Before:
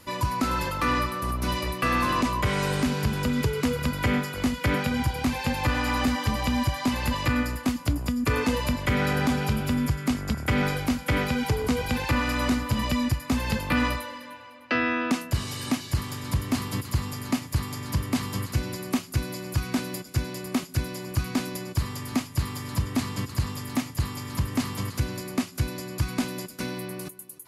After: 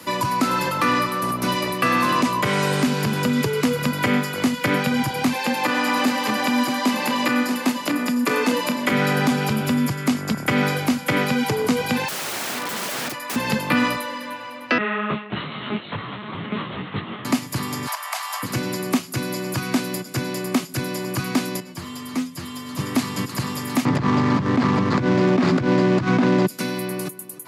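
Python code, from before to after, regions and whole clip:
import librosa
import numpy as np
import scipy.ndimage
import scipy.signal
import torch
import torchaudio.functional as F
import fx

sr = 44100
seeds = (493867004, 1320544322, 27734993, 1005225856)

y = fx.chain(x, sr, fx.highpass(hz=210.0, slope=24),
    fx.echo_single(ms=635, db=-7.0), at=(5.33, 8.91))
y = fx.chain(y, sr, fx.highpass(hz=450.0, slope=12),
    fx.overflow_wrap(gain_db=29.5), at=(12.08, 13.36))
y = fx.chain(y, sr, fx.peak_eq(hz=1300.0, db=3.5, octaves=0.25),
    fx.lpc_monotone(seeds[0], pitch_hz=210.0, order=10),
    fx.detune_double(cents=31), at=(14.78, 17.25))
y = fx.chain(y, sr, fx.steep_highpass(hz=640.0, slope=72),
    fx.peak_eq(hz=2900.0, db=-3.0, octaves=2.1),
    fx.band_squash(depth_pct=100), at=(17.87, 18.43))
y = fx.chain(y, sr, fx.stiff_resonator(f0_hz=84.0, decay_s=0.27, stiffness=0.002),
    fx.doppler_dist(depth_ms=0.13), at=(21.6, 22.79))
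y = fx.chain(y, sr, fx.median_filter(points=15),
    fx.air_absorb(metres=150.0),
    fx.env_flatten(amount_pct=100), at=(23.85, 26.47))
y = scipy.signal.sosfilt(scipy.signal.butter(4, 140.0, 'highpass', fs=sr, output='sos'), y)
y = fx.band_squash(y, sr, depth_pct=40)
y = y * 10.0 ** (5.5 / 20.0)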